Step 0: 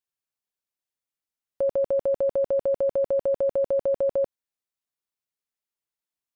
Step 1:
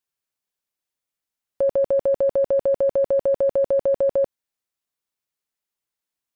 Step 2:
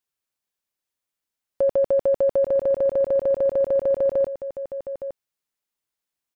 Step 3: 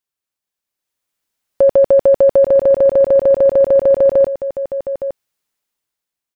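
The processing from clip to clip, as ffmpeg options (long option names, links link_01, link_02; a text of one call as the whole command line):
ffmpeg -i in.wav -af "acontrast=39,volume=-1.5dB" out.wav
ffmpeg -i in.wav -af "aecho=1:1:863:0.266" out.wav
ffmpeg -i in.wav -af "dynaudnorm=framelen=210:gausssize=9:maxgain=10dB" out.wav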